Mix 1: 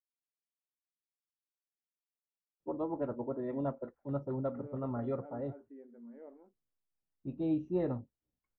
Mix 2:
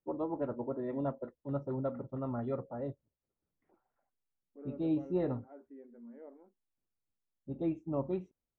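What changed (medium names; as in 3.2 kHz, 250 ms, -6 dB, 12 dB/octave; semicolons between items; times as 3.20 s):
first voice: entry -2.60 s; master: remove distance through air 85 m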